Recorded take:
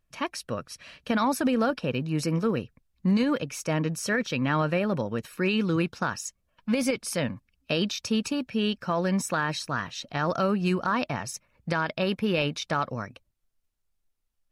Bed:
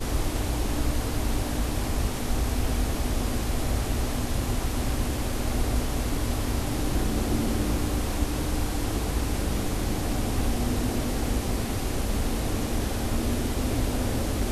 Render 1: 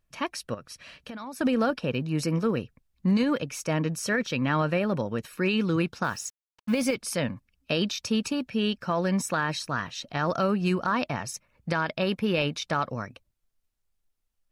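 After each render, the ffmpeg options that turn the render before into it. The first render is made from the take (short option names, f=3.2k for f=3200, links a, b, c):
-filter_complex "[0:a]asettb=1/sr,asplit=3[a][b][c];[a]atrim=end=0.544[d];[b]atrim=start=0.54:end=1.41,asetpts=PTS-STARTPTS,afade=t=in:d=0.004:c=qsin,afade=t=out:st=0.866:d=0.004:c=qsin,acompressor=threshold=-38dB:ratio=4:attack=3.2:release=140:knee=1:detection=peak[e];[c]atrim=start=1.406[f];[d][e]acrossfade=d=0.004:c1=hsin:c2=qsin[g];[g][f]acrossfade=d=0.004:c1=qsin:c2=hsin,asettb=1/sr,asplit=3[h][i][j];[h]atrim=end=6.044[k];[i]atrim=start=6.04:end=6.95,asetpts=PTS-STARTPTS,afade=t=in:d=0.004:c=qsin,afade=t=out:st=0.906:d=0.004:c=qsin,acrusher=bits=7:mix=0:aa=0.5[l];[j]atrim=start=6.946[m];[k][l]acrossfade=d=0.004:c1=hsin:c2=qsin[n];[n][m]acrossfade=d=0.004:c1=qsin:c2=hsin"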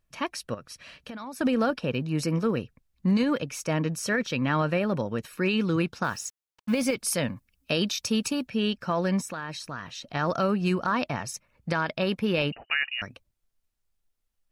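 -filter_complex "[0:a]asettb=1/sr,asplit=3[a][b][c];[a]atrim=end=6.974[d];[b]atrim=start=6.97:end=8.47,asetpts=PTS-STARTPTS,afade=t=in:d=0.004:c=qsin,afade=t=out:st=1.496:d=0.004:c=qsin,highshelf=f=8.1k:g=10.5[e];[c]atrim=start=8.466[f];[d][e]acrossfade=d=0.004:c1=hsin:c2=qsin[g];[g][f]acrossfade=d=0.004:c1=qsin:c2=hsin,asettb=1/sr,asplit=3[h][i][j];[h]atrim=end=9.204[k];[i]atrim=start=9.2:end=10.06,asetpts=PTS-STARTPTS,afade=t=in:d=0.004:c=qsin,afade=t=out:st=0.856:d=0.004:c=qsin,acompressor=threshold=-37dB:ratio=2:attack=3.2:release=140:knee=1:detection=peak[l];[j]atrim=start=10.056[m];[k][l]acrossfade=d=0.004:c1=hsin:c2=qsin[n];[n][m]acrossfade=d=0.004:c1=qsin:c2=hsin,asettb=1/sr,asplit=3[o][p][q];[o]atrim=end=12.524[r];[p]atrim=start=12.52:end=13.02,asetpts=PTS-STARTPTS,afade=t=in:d=0.004:c=qsin,afade=t=out:st=0.496:d=0.004:c=qsin,lowpass=f=2.6k:t=q:w=0.5098,lowpass=f=2.6k:t=q:w=0.6013,lowpass=f=2.6k:t=q:w=0.9,lowpass=f=2.6k:t=q:w=2.563,afreqshift=-3000[s];[q]atrim=start=13.016[t];[r][s]acrossfade=d=0.004:c1=hsin:c2=qsin[u];[u][t]acrossfade=d=0.004:c1=qsin:c2=hsin"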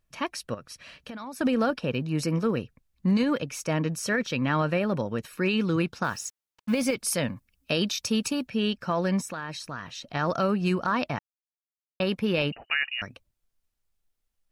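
-filter_complex "[0:a]asplit=3[a][b][c];[a]atrim=end=11.19,asetpts=PTS-STARTPTS,afade=t=out:st=11.186:d=0.004:c=hsin[d];[b]atrim=start=11.19:end=12,asetpts=PTS-STARTPTS,volume=0[e];[c]atrim=start=12,asetpts=PTS-STARTPTS,afade=t=in:d=0.004:c=hsin[f];[d][e][f]concat=n=3:v=0:a=1"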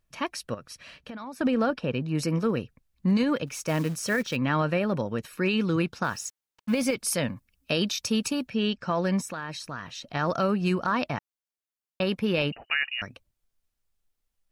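-filter_complex "[0:a]asettb=1/sr,asplit=3[a][b][c];[a]atrim=end=0.994[d];[b]atrim=start=0.99:end=2.15,asetpts=PTS-STARTPTS,afade=t=in:d=0.004:c=qsin,afade=t=out:st=1.156:d=0.004:c=qsin,highshelf=f=5k:g=-8[e];[c]atrim=start=2.146[f];[d][e]acrossfade=d=0.004:c1=hsin:c2=qsin[g];[g][f]acrossfade=d=0.004:c1=qsin:c2=hsin,asplit=3[h][i][j];[h]afade=t=out:st=3.46:d=0.02[k];[i]acrusher=bits=5:mode=log:mix=0:aa=0.000001,afade=t=in:st=3.46:d=0.02,afade=t=out:st=4.35:d=0.02[l];[j]afade=t=in:st=4.35:d=0.02[m];[k][l][m]amix=inputs=3:normalize=0,asettb=1/sr,asplit=3[n][o][p];[n]atrim=end=8.534[q];[o]atrim=start=8.53:end=9.04,asetpts=PTS-STARTPTS,afade=t=in:d=0.004:c=qsin,afade=t=out:st=0.506:d=0.004:c=qsin,lowpass=f=7.7k:w=0.5412,lowpass=f=7.7k:w=1.3066[r];[p]atrim=start=9.036[s];[q][r]acrossfade=d=0.004:c1=hsin:c2=qsin[t];[t][s]acrossfade=d=0.004:c1=qsin:c2=hsin"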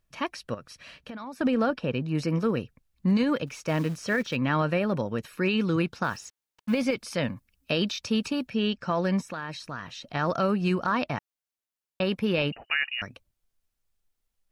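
-filter_complex "[0:a]acrossover=split=5100[a][b];[b]acompressor=threshold=-51dB:ratio=4:attack=1:release=60[c];[a][c]amix=inputs=2:normalize=0"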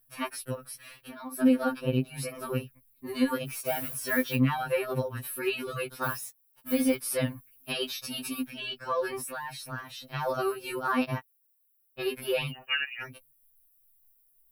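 -af "aexciter=amount=12.1:drive=7.4:freq=9.5k,afftfilt=real='re*2.45*eq(mod(b,6),0)':imag='im*2.45*eq(mod(b,6),0)':win_size=2048:overlap=0.75"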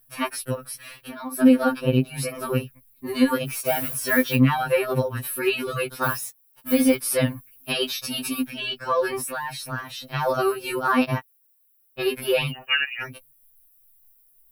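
-af "volume=7dB"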